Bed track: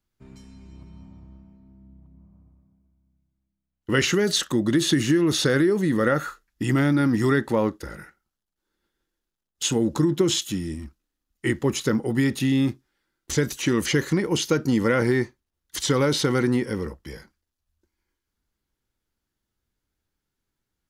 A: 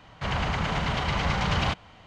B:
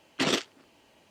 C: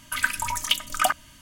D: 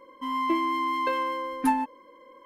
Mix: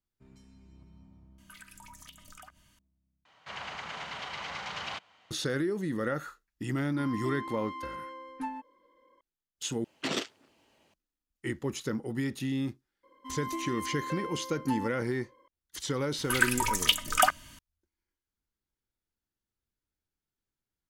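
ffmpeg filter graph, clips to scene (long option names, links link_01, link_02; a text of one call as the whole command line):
ffmpeg -i bed.wav -i cue0.wav -i cue1.wav -i cue2.wav -i cue3.wav -filter_complex "[3:a]asplit=2[link_01][link_02];[4:a]asplit=2[link_03][link_04];[0:a]volume=-10.5dB[link_05];[link_01]acompressor=threshold=-33dB:ratio=6:attack=3.2:release=140:knee=1:detection=peak[link_06];[1:a]highpass=frequency=1000:poles=1[link_07];[link_03]lowpass=7600[link_08];[link_05]asplit=3[link_09][link_10][link_11];[link_09]atrim=end=3.254[link_12];[link_07]atrim=end=2.06,asetpts=PTS-STARTPTS,volume=-7.5dB[link_13];[link_10]atrim=start=5.306:end=9.844[link_14];[2:a]atrim=end=1.1,asetpts=PTS-STARTPTS,volume=-6dB[link_15];[link_11]atrim=start=10.936[link_16];[link_06]atrim=end=1.41,asetpts=PTS-STARTPTS,volume=-14.5dB,afade=type=in:duration=0.004:curve=hsin,afade=type=out:start_time=1.406:duration=0.004:curve=hsin,adelay=1380[link_17];[link_08]atrim=end=2.45,asetpts=PTS-STARTPTS,volume=-13dB,afade=type=in:duration=0.004:curve=hsin,afade=type=out:start_time=2.446:duration=0.004:curve=hsin,adelay=6760[link_18];[link_04]atrim=end=2.45,asetpts=PTS-STARTPTS,volume=-11dB,afade=type=in:duration=0.004:curve=hsin,afade=type=out:start_time=2.446:duration=0.004:curve=hsin,adelay=13030[link_19];[link_02]atrim=end=1.41,asetpts=PTS-STARTPTS,volume=-1dB,afade=type=in:duration=0.004:curve=hsin,afade=type=out:start_time=1.406:duration=0.004:curve=hsin,adelay=16180[link_20];[link_12][link_13]acrossfade=duration=0.004:curve1=hsin:curve2=hsin[link_21];[link_21][link_14]acrossfade=duration=0.004:curve1=hsin:curve2=hsin[link_22];[link_22][link_15]acrossfade=duration=0.004:curve1=hsin:curve2=hsin[link_23];[link_23][link_16]acrossfade=duration=0.004:curve1=hsin:curve2=hsin[link_24];[link_24][link_17][link_18][link_19][link_20]amix=inputs=5:normalize=0" out.wav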